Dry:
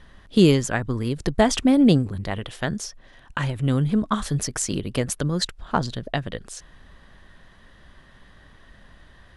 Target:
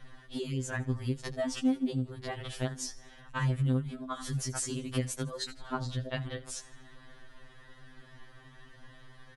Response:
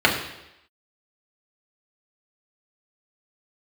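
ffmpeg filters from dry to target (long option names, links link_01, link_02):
-filter_complex "[0:a]acompressor=threshold=-28dB:ratio=12,asplit=5[link_01][link_02][link_03][link_04][link_05];[link_02]adelay=80,afreqshift=44,volume=-18dB[link_06];[link_03]adelay=160,afreqshift=88,volume=-24.9dB[link_07];[link_04]adelay=240,afreqshift=132,volume=-31.9dB[link_08];[link_05]adelay=320,afreqshift=176,volume=-38.8dB[link_09];[link_01][link_06][link_07][link_08][link_09]amix=inputs=5:normalize=0,afftfilt=real='re*2.45*eq(mod(b,6),0)':imag='im*2.45*eq(mod(b,6),0)':win_size=2048:overlap=0.75"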